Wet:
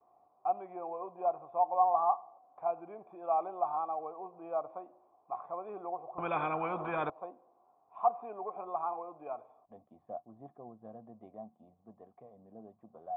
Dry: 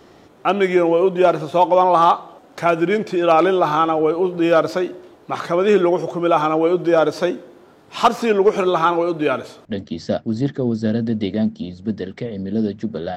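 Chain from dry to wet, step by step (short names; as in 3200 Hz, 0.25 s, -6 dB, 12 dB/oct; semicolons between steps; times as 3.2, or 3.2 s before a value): gate with hold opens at -42 dBFS; vocal tract filter a; 6.18–7.1 spectral compressor 4:1; gain -7 dB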